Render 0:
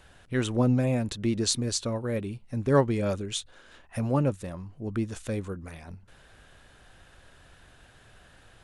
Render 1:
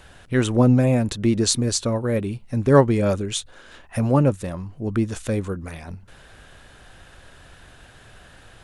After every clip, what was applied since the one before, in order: dynamic EQ 3600 Hz, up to -3 dB, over -46 dBFS, Q 0.83; gain +7.5 dB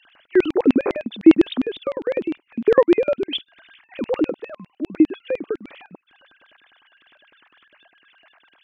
sine-wave speech; LFO high-pass square 9.9 Hz 310–3000 Hz; gain -2 dB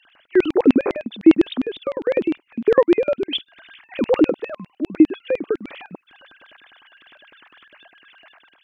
AGC gain up to 7 dB; gain -1 dB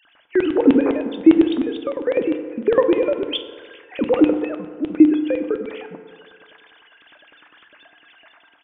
FDN reverb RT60 1.9 s, low-frequency decay 0.7×, high-frequency decay 0.4×, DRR 6.5 dB; downsampling 8000 Hz; gain -1 dB

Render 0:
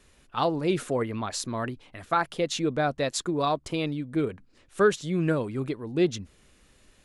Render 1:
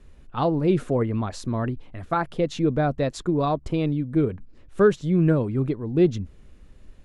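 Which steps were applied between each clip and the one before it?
tilt -3 dB/oct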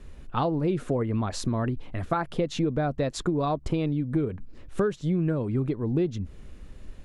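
compressor 6:1, threshold -28 dBFS, peak gain reduction 15 dB; gain +5 dB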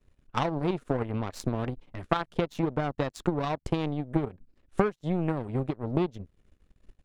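power-law curve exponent 2; gain +6 dB

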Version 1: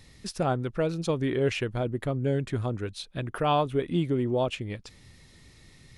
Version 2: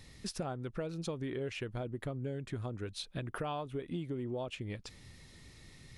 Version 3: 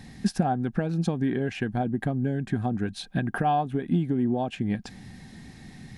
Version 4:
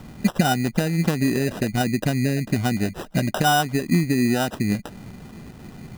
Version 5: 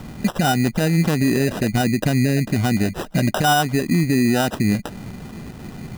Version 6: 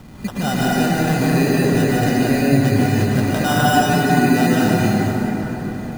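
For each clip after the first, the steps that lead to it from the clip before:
compressor, threshold -34 dBFS, peak gain reduction 13.5 dB; gain -1.5 dB
small resonant body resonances 210/750/1600 Hz, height 16 dB, ringing for 30 ms; gain +3.5 dB
sample-and-hold 20×; gain +5 dB
limiter -16 dBFS, peak gain reduction 9 dB; gain +5.5 dB
plate-style reverb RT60 4.5 s, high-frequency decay 0.5×, pre-delay 0.105 s, DRR -8 dB; gain -5.5 dB

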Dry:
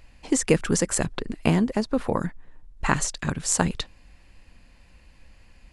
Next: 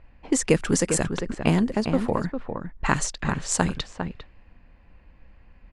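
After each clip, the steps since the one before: outdoor echo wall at 69 m, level -7 dB; low-pass opened by the level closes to 1700 Hz, open at -17.5 dBFS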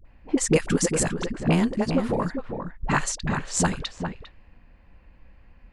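dispersion highs, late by 53 ms, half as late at 460 Hz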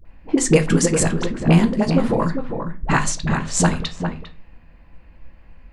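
reverb RT60 0.35 s, pre-delay 6 ms, DRR 7.5 dB; gain +4 dB

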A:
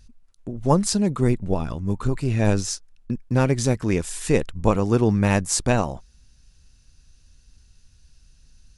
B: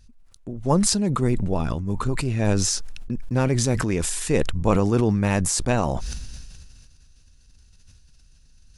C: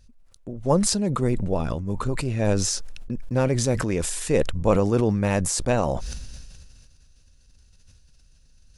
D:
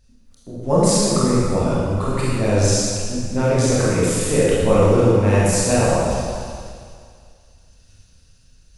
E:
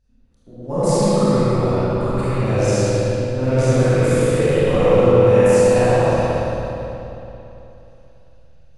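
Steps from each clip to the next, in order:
sustainer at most 26 dB/s; gain -2.5 dB
bell 540 Hz +6 dB 0.51 oct; gain -2 dB
reverb RT60 2.1 s, pre-delay 23 ms, DRR -8 dB; gain -2.5 dB
spring tank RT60 3.2 s, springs 54/58 ms, chirp 20 ms, DRR -9 dB; mismatched tape noise reduction decoder only; gain -8.5 dB

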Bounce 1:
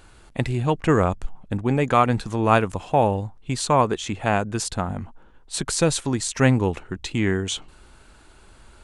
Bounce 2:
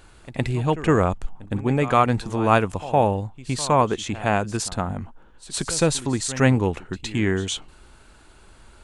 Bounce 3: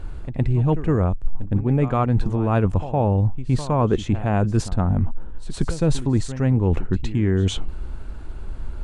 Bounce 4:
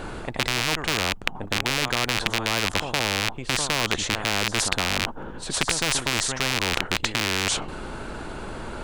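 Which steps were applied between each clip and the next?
pre-echo 0.113 s -16.5 dB
tilt -3.5 dB/oct; reverse; compressor 8:1, threshold -20 dBFS, peak gain reduction 19.5 dB; reverse; gain +4.5 dB
rattling part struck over -22 dBFS, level -12 dBFS; spectral compressor 4:1; gain +3.5 dB

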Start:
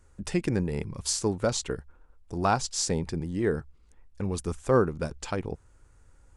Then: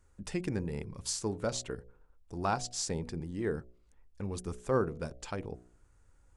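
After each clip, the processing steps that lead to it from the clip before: de-hum 60.65 Hz, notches 12; gain -6.5 dB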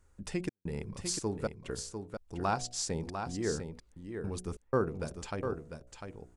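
step gate "xxx.xxxxx.xx.xxx" 92 bpm -60 dB; echo 0.699 s -7 dB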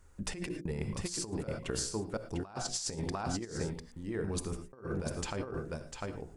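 notches 60/120/180/240/300/360/420/480/540 Hz; on a send at -10 dB: reverb, pre-delay 3 ms; on the sum: negative-ratio compressor -38 dBFS, ratio -0.5; gain +2.5 dB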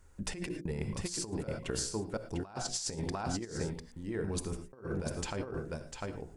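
notch 1200 Hz, Q 17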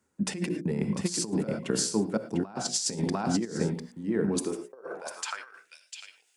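reverse; upward compressor, threshold -40 dBFS; reverse; high-pass sweep 200 Hz -> 2700 Hz, 4.26–5.74; three-band expander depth 40%; gain +5 dB

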